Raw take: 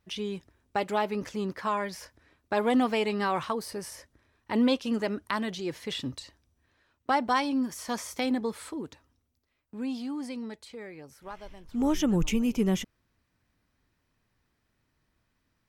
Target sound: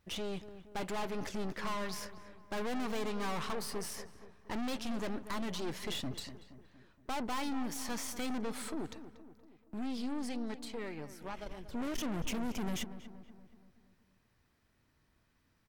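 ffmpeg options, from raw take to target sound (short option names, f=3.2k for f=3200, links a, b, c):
-filter_complex "[0:a]aeval=exprs='(tanh(79.4*val(0)+0.75)-tanh(0.75))/79.4':c=same,alimiter=level_in=13dB:limit=-24dB:level=0:latency=1:release=73,volume=-13dB,asplit=2[a][b];[b]adelay=236,lowpass=f=1.8k:p=1,volume=-12dB,asplit=2[c][d];[d]adelay=236,lowpass=f=1.8k:p=1,volume=0.55,asplit=2[e][f];[f]adelay=236,lowpass=f=1.8k:p=1,volume=0.55,asplit=2[g][h];[h]adelay=236,lowpass=f=1.8k:p=1,volume=0.55,asplit=2[i][j];[j]adelay=236,lowpass=f=1.8k:p=1,volume=0.55,asplit=2[k][l];[l]adelay=236,lowpass=f=1.8k:p=1,volume=0.55[m];[a][c][e][g][i][k][m]amix=inputs=7:normalize=0,volume=5.5dB"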